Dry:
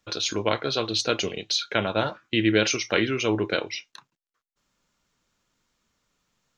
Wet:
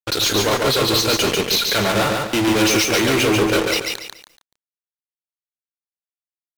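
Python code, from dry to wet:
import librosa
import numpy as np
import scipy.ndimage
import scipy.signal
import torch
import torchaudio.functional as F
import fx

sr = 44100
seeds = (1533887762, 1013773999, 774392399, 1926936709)

y = fx.fuzz(x, sr, gain_db=37.0, gate_db=-38.0)
y = fx.echo_crushed(y, sr, ms=143, feedback_pct=35, bits=8, wet_db=-3)
y = y * 10.0 ** (-3.0 / 20.0)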